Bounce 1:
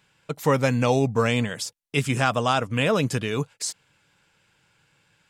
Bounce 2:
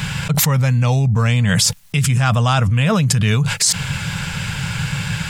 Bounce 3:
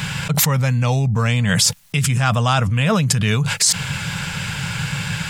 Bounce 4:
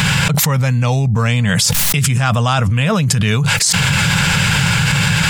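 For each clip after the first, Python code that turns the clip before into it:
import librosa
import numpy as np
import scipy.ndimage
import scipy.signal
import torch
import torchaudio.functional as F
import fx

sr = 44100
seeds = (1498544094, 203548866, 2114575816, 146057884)

y1 = fx.curve_eq(x, sr, hz=(170.0, 310.0, 730.0, 1700.0), db=(0, -21, -13, -10))
y1 = fx.env_flatten(y1, sr, amount_pct=100)
y1 = y1 * 10.0 ** (7.5 / 20.0)
y2 = fx.low_shelf(y1, sr, hz=85.0, db=-8.5)
y3 = fx.env_flatten(y2, sr, amount_pct=100)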